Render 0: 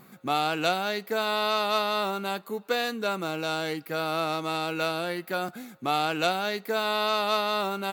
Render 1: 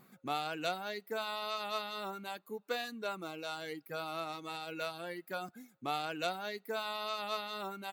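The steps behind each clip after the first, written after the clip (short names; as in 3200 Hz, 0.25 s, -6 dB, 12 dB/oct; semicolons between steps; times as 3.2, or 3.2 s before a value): reverb removal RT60 1.5 s; gain -9 dB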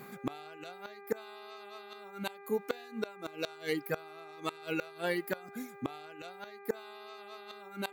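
flipped gate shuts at -29 dBFS, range -24 dB; buzz 400 Hz, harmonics 6, -62 dBFS -5 dB/oct; gain +10.5 dB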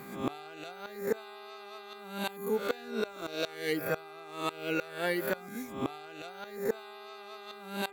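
spectral swells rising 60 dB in 0.53 s; gain +1 dB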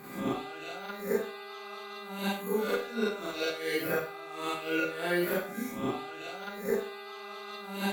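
in parallel at -0.5 dB: limiter -25 dBFS, peak gain reduction 9.5 dB; on the sum: Schroeder reverb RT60 0.4 s, combs from 31 ms, DRR -6 dB; gain -9 dB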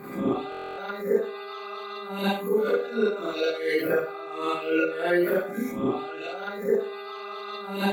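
formant sharpening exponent 1.5; stuck buffer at 0.5, samples 1024, times 11; gain +6.5 dB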